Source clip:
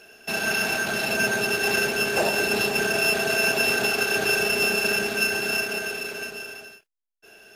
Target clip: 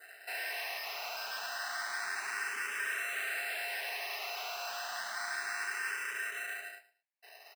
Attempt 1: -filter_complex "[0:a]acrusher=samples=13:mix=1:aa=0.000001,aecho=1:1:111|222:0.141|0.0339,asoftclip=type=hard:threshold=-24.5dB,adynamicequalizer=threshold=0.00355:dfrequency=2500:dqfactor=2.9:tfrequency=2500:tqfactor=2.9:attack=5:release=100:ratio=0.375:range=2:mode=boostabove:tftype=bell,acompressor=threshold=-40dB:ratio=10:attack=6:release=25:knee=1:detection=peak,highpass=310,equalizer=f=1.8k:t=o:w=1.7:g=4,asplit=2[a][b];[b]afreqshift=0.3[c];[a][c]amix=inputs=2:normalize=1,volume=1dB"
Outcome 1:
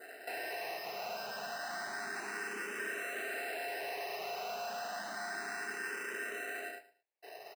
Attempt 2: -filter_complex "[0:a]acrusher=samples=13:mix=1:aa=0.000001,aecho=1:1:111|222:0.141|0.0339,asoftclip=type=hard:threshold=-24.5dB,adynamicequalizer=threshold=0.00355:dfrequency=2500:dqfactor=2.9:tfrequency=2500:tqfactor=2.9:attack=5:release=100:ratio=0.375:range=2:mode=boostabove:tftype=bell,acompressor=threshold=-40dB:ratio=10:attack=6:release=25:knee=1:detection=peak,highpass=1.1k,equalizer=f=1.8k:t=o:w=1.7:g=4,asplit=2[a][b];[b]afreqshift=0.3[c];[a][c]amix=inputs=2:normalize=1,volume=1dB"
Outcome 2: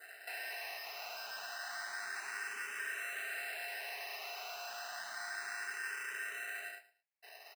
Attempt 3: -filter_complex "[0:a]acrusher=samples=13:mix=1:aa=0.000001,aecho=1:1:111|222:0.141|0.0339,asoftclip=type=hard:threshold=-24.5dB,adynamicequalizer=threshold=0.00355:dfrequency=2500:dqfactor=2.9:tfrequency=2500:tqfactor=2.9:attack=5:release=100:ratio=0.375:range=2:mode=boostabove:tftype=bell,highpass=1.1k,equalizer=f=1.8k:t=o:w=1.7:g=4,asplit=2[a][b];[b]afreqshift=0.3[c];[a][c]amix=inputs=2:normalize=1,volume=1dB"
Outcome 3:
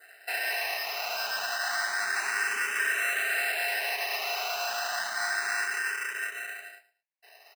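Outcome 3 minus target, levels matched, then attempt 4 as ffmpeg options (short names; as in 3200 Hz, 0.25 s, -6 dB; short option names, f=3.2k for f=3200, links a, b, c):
hard clip: distortion -5 dB
-filter_complex "[0:a]acrusher=samples=13:mix=1:aa=0.000001,aecho=1:1:111|222:0.141|0.0339,asoftclip=type=hard:threshold=-34.5dB,adynamicequalizer=threshold=0.00355:dfrequency=2500:dqfactor=2.9:tfrequency=2500:tqfactor=2.9:attack=5:release=100:ratio=0.375:range=2:mode=boostabove:tftype=bell,highpass=1.1k,equalizer=f=1.8k:t=o:w=1.7:g=4,asplit=2[a][b];[b]afreqshift=0.3[c];[a][c]amix=inputs=2:normalize=1,volume=1dB"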